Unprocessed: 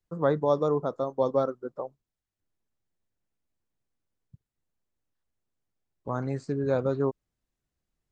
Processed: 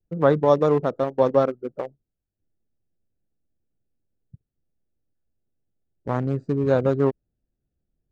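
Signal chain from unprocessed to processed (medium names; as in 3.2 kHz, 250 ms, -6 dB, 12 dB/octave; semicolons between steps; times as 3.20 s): local Wiener filter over 41 samples; trim +7 dB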